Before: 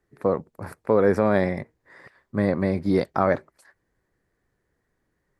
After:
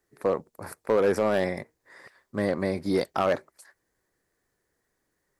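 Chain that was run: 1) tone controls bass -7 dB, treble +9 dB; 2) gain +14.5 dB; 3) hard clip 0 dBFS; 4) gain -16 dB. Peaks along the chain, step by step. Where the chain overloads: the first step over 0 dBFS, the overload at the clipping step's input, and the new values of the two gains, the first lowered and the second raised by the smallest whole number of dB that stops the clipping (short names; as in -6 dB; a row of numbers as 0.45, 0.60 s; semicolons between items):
-7.5, +7.0, 0.0, -16.0 dBFS; step 2, 7.0 dB; step 2 +7.5 dB, step 4 -9 dB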